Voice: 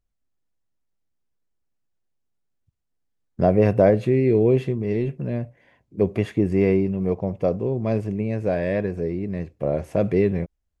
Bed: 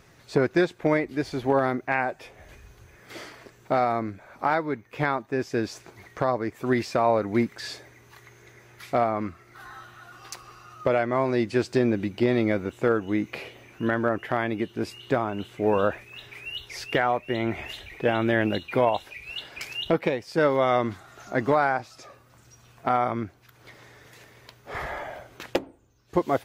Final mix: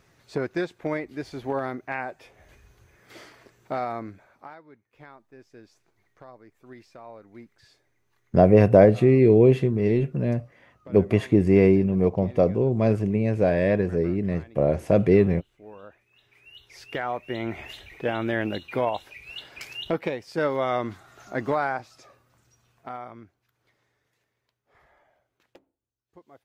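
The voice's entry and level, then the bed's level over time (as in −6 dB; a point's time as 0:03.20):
4.95 s, +2.0 dB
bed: 0:04.20 −6 dB
0:04.55 −22.5 dB
0:15.94 −22.5 dB
0:17.23 −3.5 dB
0:21.76 −3.5 dB
0:24.63 −28.5 dB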